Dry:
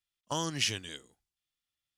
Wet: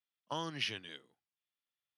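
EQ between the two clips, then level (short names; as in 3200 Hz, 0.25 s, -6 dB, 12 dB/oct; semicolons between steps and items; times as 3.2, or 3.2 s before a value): running mean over 6 samples; HPF 110 Hz 24 dB/oct; low shelf 470 Hz -5.5 dB; -2.5 dB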